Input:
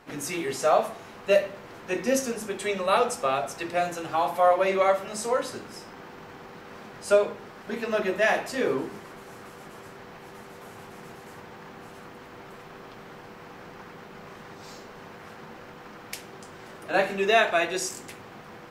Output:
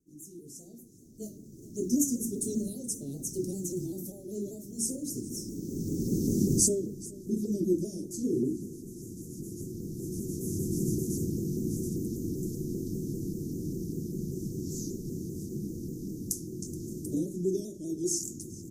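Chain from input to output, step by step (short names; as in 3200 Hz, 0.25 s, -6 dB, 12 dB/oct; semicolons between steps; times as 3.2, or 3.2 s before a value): Doppler pass-by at 6.36, 24 m/s, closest 14 m; recorder AGC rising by 9.2 dB/s; Chebyshev band-stop 340–6100 Hz, order 4; on a send: echo 0.425 s -20 dB; on the sum: shaped vibrato saw down 5.1 Hz, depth 100 cents; gain +6.5 dB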